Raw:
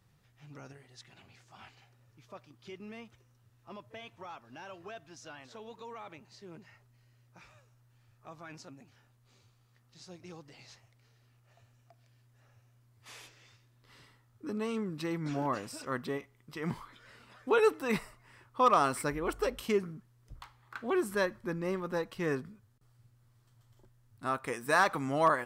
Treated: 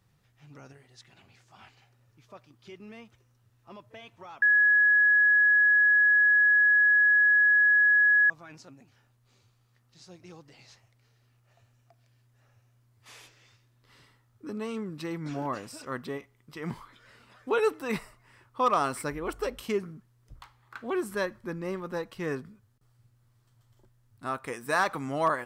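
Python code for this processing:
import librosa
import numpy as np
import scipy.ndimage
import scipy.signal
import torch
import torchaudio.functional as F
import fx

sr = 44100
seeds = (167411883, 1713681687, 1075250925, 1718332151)

y = fx.edit(x, sr, fx.bleep(start_s=4.42, length_s=3.88, hz=1680.0, db=-17.5), tone=tone)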